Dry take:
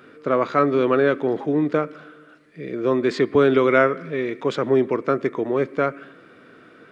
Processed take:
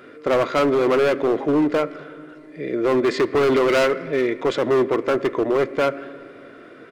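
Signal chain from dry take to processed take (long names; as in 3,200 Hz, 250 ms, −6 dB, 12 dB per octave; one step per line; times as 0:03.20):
comb filter 2.9 ms, depth 32%
hollow resonant body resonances 540/2,000 Hz, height 8 dB, ringing for 25 ms
gain into a clipping stage and back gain 16.5 dB
on a send: convolution reverb RT60 3.3 s, pre-delay 3 ms, DRR 19 dB
on the sum: level +2 dB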